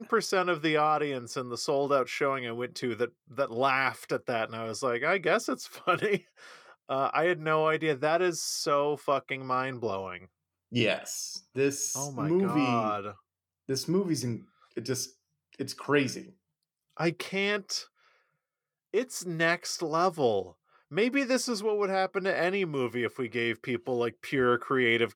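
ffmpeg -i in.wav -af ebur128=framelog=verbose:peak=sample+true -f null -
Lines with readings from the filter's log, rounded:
Integrated loudness:
  I:         -29.2 LUFS
  Threshold: -39.7 LUFS
Loudness range:
  LRA:         3.9 LU
  Threshold: -50.1 LUFS
  LRA low:   -32.5 LUFS
  LRA high:  -28.6 LUFS
Sample peak:
  Peak:      -10.9 dBFS
True peak:
  Peak:      -10.8 dBFS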